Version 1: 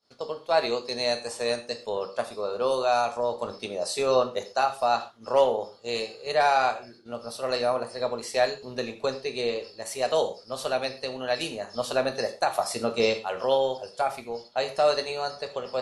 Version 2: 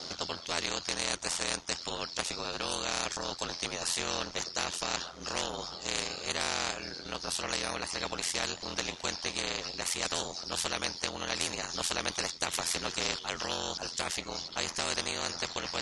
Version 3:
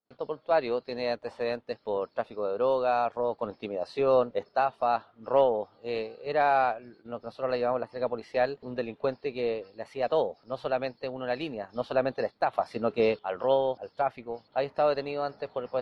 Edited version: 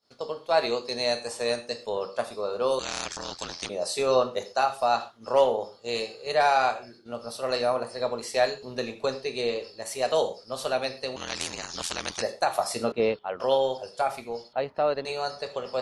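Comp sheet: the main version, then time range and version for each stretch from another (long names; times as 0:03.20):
1
0:02.79–0:03.69: punch in from 2
0:11.16–0:12.22: punch in from 2
0:12.92–0:13.40: punch in from 3
0:14.53–0:15.05: punch in from 3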